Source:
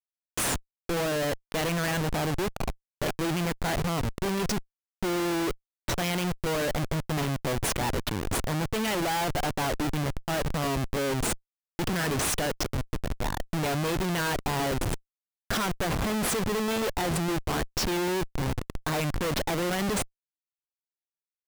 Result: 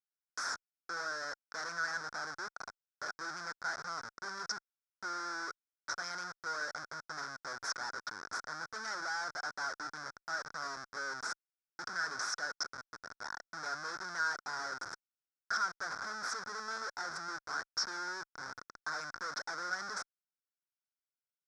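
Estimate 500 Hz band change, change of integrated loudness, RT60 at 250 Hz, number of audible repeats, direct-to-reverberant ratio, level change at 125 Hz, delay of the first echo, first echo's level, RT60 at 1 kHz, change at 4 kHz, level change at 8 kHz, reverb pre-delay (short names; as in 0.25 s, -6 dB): -20.5 dB, -10.5 dB, none, none, none, -32.0 dB, none, none, none, -9.0 dB, -11.0 dB, none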